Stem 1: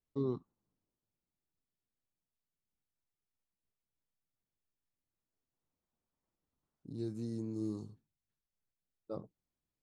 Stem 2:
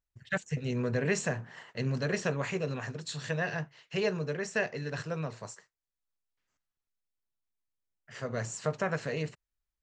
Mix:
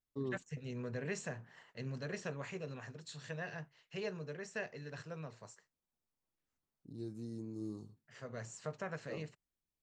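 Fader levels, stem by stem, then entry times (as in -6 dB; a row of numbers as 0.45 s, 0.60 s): -5.0 dB, -11.0 dB; 0.00 s, 0.00 s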